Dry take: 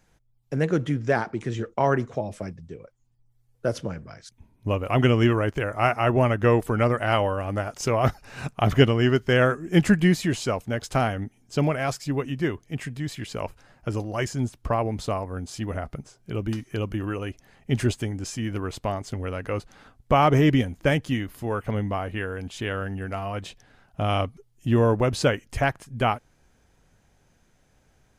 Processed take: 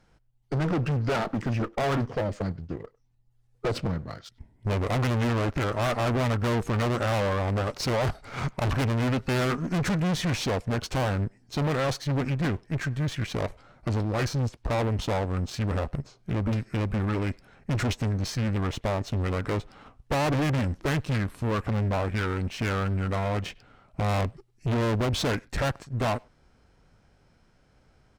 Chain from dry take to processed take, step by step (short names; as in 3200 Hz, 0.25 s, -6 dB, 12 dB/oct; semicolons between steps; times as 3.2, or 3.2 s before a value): high shelf 6400 Hz -9.5 dB; sample leveller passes 1; formant shift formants -3 st; tube stage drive 29 dB, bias 0.45; speakerphone echo 0.1 s, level -25 dB; gain +5.5 dB